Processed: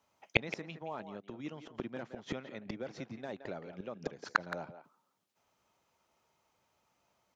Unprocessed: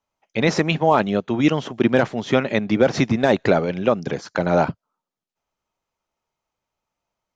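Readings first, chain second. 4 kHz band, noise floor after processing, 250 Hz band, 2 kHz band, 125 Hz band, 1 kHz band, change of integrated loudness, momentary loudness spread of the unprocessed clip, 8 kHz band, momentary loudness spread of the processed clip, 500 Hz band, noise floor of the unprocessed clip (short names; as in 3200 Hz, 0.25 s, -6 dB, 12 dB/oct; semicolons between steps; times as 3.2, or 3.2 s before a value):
-15.5 dB, -78 dBFS, -23.5 dB, -13.0 dB, -22.0 dB, -19.0 dB, -20.0 dB, 6 LU, n/a, 11 LU, -23.0 dB, under -85 dBFS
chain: HPF 77 Hz 12 dB/oct; flipped gate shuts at -18 dBFS, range -32 dB; speakerphone echo 0.17 s, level -10 dB; gain +6.5 dB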